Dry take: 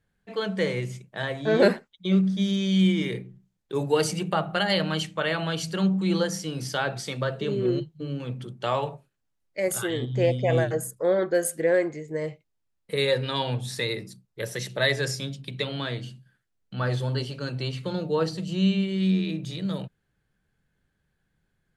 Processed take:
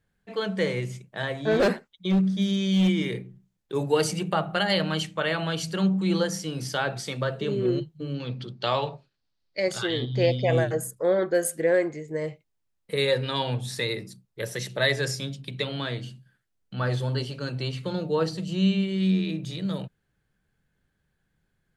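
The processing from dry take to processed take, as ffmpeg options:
-filter_complex "[0:a]asettb=1/sr,asplit=3[a][b][c];[a]atrim=end=1.514[d];[b]atrim=start=1.51:end=2.89,asetpts=PTS-STARTPTS,afade=t=in:d=0.004:c=qsin,afade=t=out:st=1.376:d=0.004:c=qsin,asoftclip=type=hard:threshold=-17dB[e];[c]atrim=start=2.886[f];[d][e]acrossfade=d=0.004:c1=hsin:c2=qsin[g];[g][f]acrossfade=d=0.004:c1=qsin:c2=hsin,asettb=1/sr,asplit=3[h][i][j];[h]atrim=end=8.144[k];[i]atrim=start=8.14:end=10.5,asetpts=PTS-STARTPTS,afade=t=in:d=0.004:c=qsin,afade=t=out:st=2.356:d=0.004:c=qsin,lowpass=f=4.5k:t=q:w=3.8[l];[j]atrim=start=10.496[m];[k][l]acrossfade=d=0.004:c1=hsin:c2=qsin[n];[n][m]acrossfade=d=0.004:c1=qsin:c2=hsin"

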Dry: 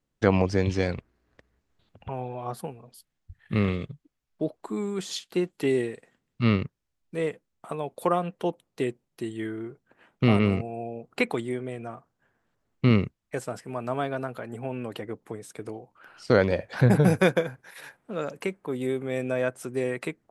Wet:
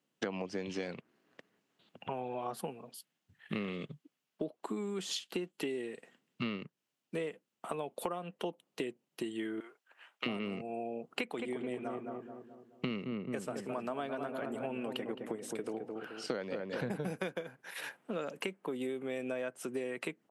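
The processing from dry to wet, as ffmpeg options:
-filter_complex "[0:a]asettb=1/sr,asplit=3[a][b][c];[a]atrim=end=9.604[d];[b]atrim=start=9.6:end=10.26,asetpts=PTS-STARTPTS,afade=t=in:d=0.004:c=qsin,afade=t=out:st=0.656:d=0.004:c=qsin,highpass=970[e];[c]atrim=start=10.256[f];[d][e]acrossfade=d=0.004:c1=hsin:c2=qsin[g];[g][f]acrossfade=d=0.004:c1=qsin:c2=hsin,asplit=3[h][i][j];[h]afade=t=out:st=11.36:d=0.02[k];[i]asplit=2[l][m];[m]adelay=215,lowpass=f=1.2k:p=1,volume=-6dB,asplit=2[n][o];[o]adelay=215,lowpass=f=1.2k:p=1,volume=0.5,asplit=2[p][q];[q]adelay=215,lowpass=f=1.2k:p=1,volume=0.5,asplit=2[r][s];[s]adelay=215,lowpass=f=1.2k:p=1,volume=0.5,asplit=2[t][u];[u]adelay=215,lowpass=f=1.2k:p=1,volume=0.5,asplit=2[v][w];[w]adelay=215,lowpass=f=1.2k:p=1,volume=0.5[x];[l][n][p][r][t][v][x]amix=inputs=7:normalize=0,afade=t=in:st=11.36:d=0.02,afade=t=out:st=16.9:d=0.02[y];[j]afade=t=in:st=16.9:d=0.02[z];[k][y][z]amix=inputs=3:normalize=0,highpass=f=170:w=0.5412,highpass=f=170:w=1.3066,equalizer=f=2.9k:t=o:w=0.35:g=6.5,acompressor=threshold=-35dB:ratio=10,volume=1dB"

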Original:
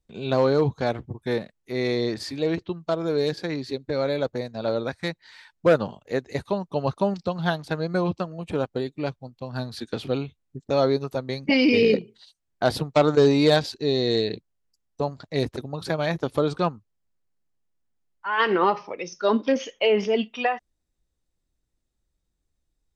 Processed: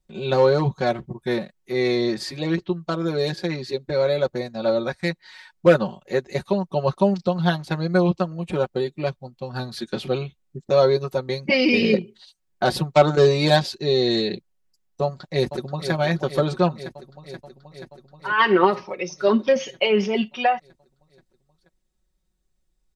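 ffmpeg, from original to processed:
-filter_complex "[0:a]asplit=2[a][b];[b]afade=t=in:st=15.03:d=0.01,afade=t=out:st=15.92:d=0.01,aecho=0:1:480|960|1440|1920|2400|2880|3360|3840|4320|4800|5280|5760:0.298538|0.223904|0.167928|0.125946|0.0944594|0.0708445|0.0531334|0.03985|0.0298875|0.0224157|0.0168117|0.0126088[c];[a][c]amix=inputs=2:normalize=0,aecho=1:1:5.4:0.81,volume=1dB"

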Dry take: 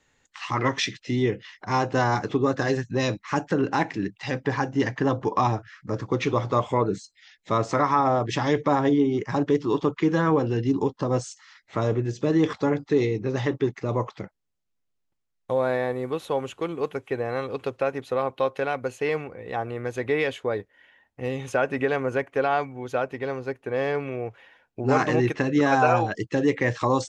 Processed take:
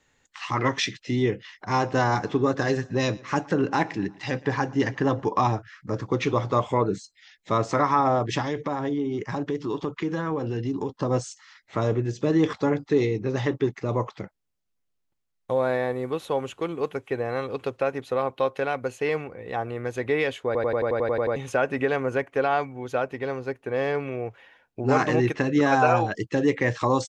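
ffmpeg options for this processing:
-filter_complex "[0:a]asplit=3[a][b][c];[a]afade=t=out:st=1.76:d=0.02[d];[b]aecho=1:1:118|236|354:0.0668|0.0354|0.0188,afade=t=in:st=1.76:d=0.02,afade=t=out:st=5.2:d=0.02[e];[c]afade=t=in:st=5.2:d=0.02[f];[d][e][f]amix=inputs=3:normalize=0,asettb=1/sr,asplit=3[g][h][i];[g]atrim=end=8.414[j];[h]atrim=start=8.41:end=10.89,asetpts=PTS-STARTPTS,afade=t=in:d=0.004:c=qsin,afade=t=out:st=2.476:d=0.004:c=qsin,acompressor=threshold=-26dB:ratio=2.5:attack=3.2:release=140:knee=1:detection=peak[k];[i]atrim=start=10.886[l];[j][k]acrossfade=d=0.004:c1=hsin:c2=qsin[m];[m][l]acrossfade=d=0.004:c1=qsin:c2=hsin,asplit=11[n][o][p][q][r][s][t][u][v][w][x];[n]atrim=end=20.552[y];[o]atrim=start=20.458:end=20.552[z];[p]atrim=start=20.458:end=20.552[aa];[q]atrim=start=20.458:end=20.552[ab];[r]atrim=start=20.458:end=20.552[ac];[s]atrim=start=20.458:end=20.552[ad];[t]atrim=start=20.458:end=20.552[ae];[u]atrim=start=20.458:end=20.552[af];[v]atrim=start=20.458:end=20.552[ag];[w]atrim=start=20.458:end=20.552[ah];[x]atrim=start=21.358[ai];[y][z]acrossfade=d=0.004:c1=hsin:c2=hsin[aj];[aj][aa]acrossfade=d=0.004:c1=hsin:c2=hsin[ak];[ak][ab]acrossfade=d=0.004:c1=hsin:c2=hsin[al];[al][ac]acrossfade=d=0.004:c1=hsin:c2=hsin[am];[am][ad]acrossfade=d=0.004:c1=hsin:c2=hsin[an];[an][ae]acrossfade=d=0.004:c1=hsin:c2=hsin[ao];[ao][af]acrossfade=d=0.004:c1=hsin:c2=hsin[ap];[ap][ag]acrossfade=d=0.004:c1=hsin:c2=hsin[aq];[aq][ah]acrossfade=d=0.004:c1=hsin:c2=hsin[ar];[ar][ai]acrossfade=d=0.004:c1=hsin:c2=hsin"

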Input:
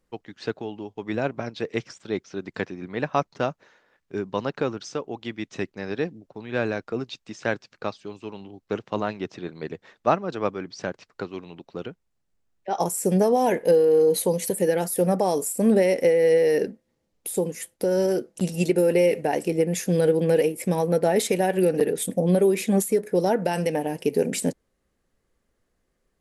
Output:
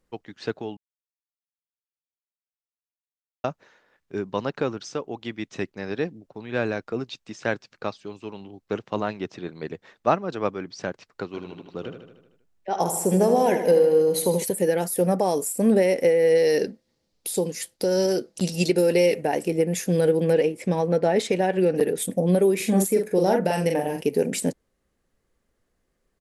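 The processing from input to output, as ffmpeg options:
-filter_complex "[0:a]asplit=3[a][b][c];[a]afade=t=out:st=11.33:d=0.02[d];[b]aecho=1:1:77|154|231|308|385|462|539:0.376|0.222|0.131|0.0772|0.0455|0.0269|0.0159,afade=t=in:st=11.33:d=0.02,afade=t=out:st=14.42:d=0.02[e];[c]afade=t=in:st=14.42:d=0.02[f];[d][e][f]amix=inputs=3:normalize=0,asettb=1/sr,asplit=3[g][h][i];[g]atrim=end=16.354[j];[h]atrim=start=16.35:end=19.15,asetpts=PTS-STARTPTS,afade=t=in:d=0.004:c=qsin,afade=t=out:st=2.796:d=0.004:c=qsin,equalizer=f=4.6k:w=1.4:g=11[k];[i]atrim=start=19.146[l];[j][k]acrossfade=d=0.004:c1=hsin:c2=qsin[m];[m][l]acrossfade=d=0.004:c1=qsin:c2=hsin,asettb=1/sr,asplit=3[n][o][p];[n]atrim=end=20.334[q];[o]atrim=start=20.33:end=21.76,asetpts=PTS-STARTPTS,afade=t=in:d=0.004:c=qsin,afade=t=out:st=1.426:d=0.004:c=qsin,lowpass=5.7k[r];[p]atrim=start=21.756[s];[q][r]acrossfade=d=0.004:c1=hsin:c2=qsin[t];[t][s]acrossfade=d=0.004:c1=qsin:c2=hsin,asettb=1/sr,asplit=3[u][v][w];[u]atrim=end=22.564[x];[v]atrim=start=22.56:end=24.03,asetpts=PTS-STARTPTS,afade=t=in:d=0.004:c=qsin,afade=t=out:st=1.466:d=0.004:c=qsin,asplit=2[y][z];[z]adelay=42,volume=-4dB[aa];[y][aa]amix=inputs=2:normalize=0,atrim=end_sample=64827[ab];[w]atrim=start=24.026[ac];[x][ab]acrossfade=d=0.004:c1=hsin:c2=qsin[ad];[ad][ac]acrossfade=d=0.004:c1=qsin:c2=hsin,asplit=3[ae][af][ag];[ae]atrim=end=0.77,asetpts=PTS-STARTPTS,afade=t=out:st=0.766:d=0.004:c=hsin[ah];[af]atrim=start=0.77:end=3.44,asetpts=PTS-STARTPTS,volume=0[ai];[ag]atrim=start=3.44,asetpts=PTS-STARTPTS,afade=t=in:d=0.004:c=hsin[aj];[ah][ai][aj]concat=n=3:v=0:a=1"

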